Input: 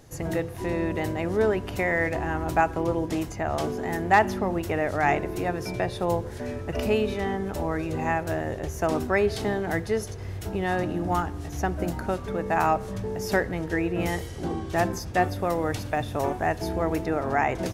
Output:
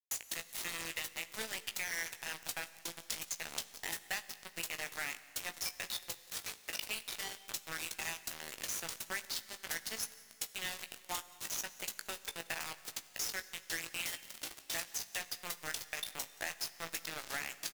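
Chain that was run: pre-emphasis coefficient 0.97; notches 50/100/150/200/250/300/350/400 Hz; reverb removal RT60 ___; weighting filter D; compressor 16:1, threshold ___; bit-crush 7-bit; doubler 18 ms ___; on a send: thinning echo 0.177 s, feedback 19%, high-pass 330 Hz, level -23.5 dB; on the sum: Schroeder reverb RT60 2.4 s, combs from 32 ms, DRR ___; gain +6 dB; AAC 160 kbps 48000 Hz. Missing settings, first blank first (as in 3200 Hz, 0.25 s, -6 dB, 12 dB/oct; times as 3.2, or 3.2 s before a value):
0.55 s, -43 dBFS, -9 dB, 15 dB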